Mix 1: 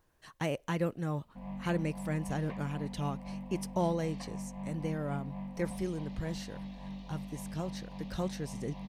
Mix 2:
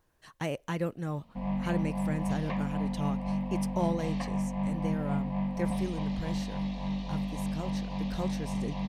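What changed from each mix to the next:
background +10.0 dB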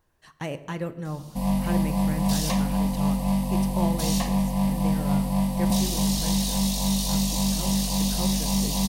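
background: remove transistor ladder low-pass 2,800 Hz, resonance 30%
reverb: on, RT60 0.95 s

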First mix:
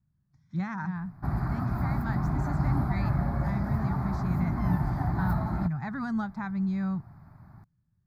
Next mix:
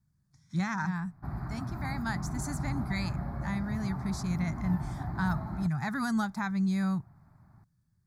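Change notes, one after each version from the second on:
speech: remove head-to-tape spacing loss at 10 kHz 26 dB
background −7.5 dB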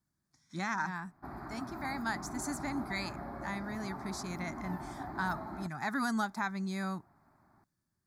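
master: add low shelf with overshoot 210 Hz −12.5 dB, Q 1.5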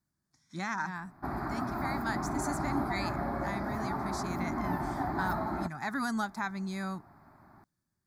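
background +9.0 dB

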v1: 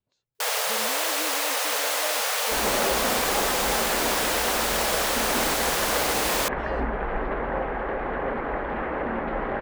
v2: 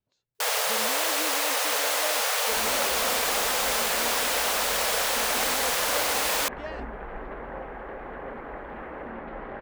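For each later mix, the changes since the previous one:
second sound −9.5 dB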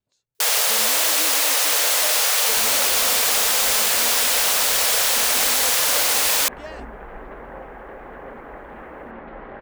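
speech: remove high-frequency loss of the air 130 metres
first sound: add high-shelf EQ 2,400 Hz +10 dB

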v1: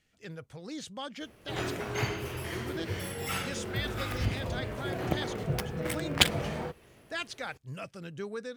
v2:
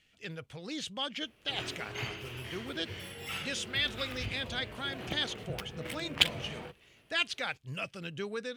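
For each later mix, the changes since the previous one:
background −9.5 dB
master: add parametric band 2,900 Hz +10 dB 1 octave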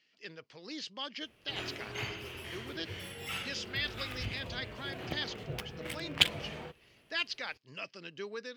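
speech: add loudspeaker in its box 330–5,400 Hz, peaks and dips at 520 Hz −5 dB, 750 Hz −7 dB, 1,400 Hz −6 dB, 2,400 Hz −4 dB, 3,500 Hz −7 dB, 4,900 Hz +7 dB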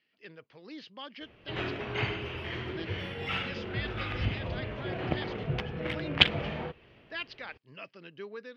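background +9.0 dB
master: add high-frequency loss of the air 280 metres

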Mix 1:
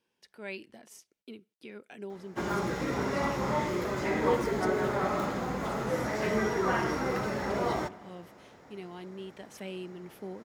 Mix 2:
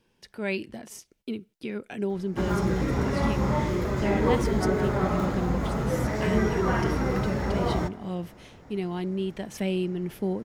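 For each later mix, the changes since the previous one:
speech +8.5 dB
master: remove high-pass filter 380 Hz 6 dB per octave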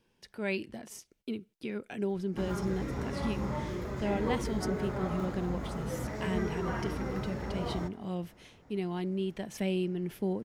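speech −3.5 dB
background −9.5 dB

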